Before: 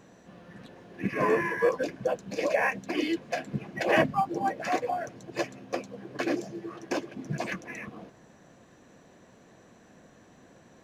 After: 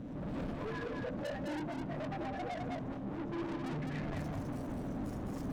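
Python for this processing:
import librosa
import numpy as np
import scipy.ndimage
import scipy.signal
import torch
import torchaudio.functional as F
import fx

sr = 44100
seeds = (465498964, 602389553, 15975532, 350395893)

p1 = x + 0.5 * 10.0 ** (-35.0 / 20.0) * np.sign(x)
p2 = fx.recorder_agc(p1, sr, target_db=-16.0, rise_db_per_s=29.0, max_gain_db=30)
p3 = (np.mod(10.0 ** (19.5 / 20.0) * p2 + 1.0, 2.0) - 1.0) / 10.0 ** (19.5 / 20.0)
p4 = p2 + F.gain(torch.from_numpy(p3), -3.5).numpy()
p5 = fx.stretch_vocoder_free(p4, sr, factor=0.51)
p6 = fx.low_shelf(p5, sr, hz=440.0, db=10.5)
p7 = fx.comb_fb(p6, sr, f0_hz=150.0, decay_s=1.2, harmonics='all', damping=0.0, mix_pct=70)
p8 = fx.small_body(p7, sr, hz=(270.0, 580.0), ring_ms=50, db=12)
p9 = fx.noise_reduce_blind(p8, sr, reduce_db=13)
p10 = fx.riaa(p9, sr, side='playback')
p11 = fx.tube_stage(p10, sr, drive_db=36.0, bias=0.35)
p12 = p11 + fx.echo_single(p11, sr, ms=208, db=-3.5, dry=0)
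p13 = fx.dmg_buzz(p12, sr, base_hz=120.0, harmonics=33, level_db=-53.0, tilt_db=-7, odd_only=False)
y = F.gain(torch.from_numpy(p13), -2.5).numpy()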